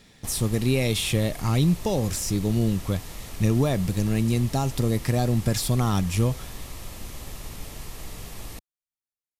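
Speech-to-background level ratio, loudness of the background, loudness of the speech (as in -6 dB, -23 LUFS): 15.0 dB, -39.5 LUFS, -24.5 LUFS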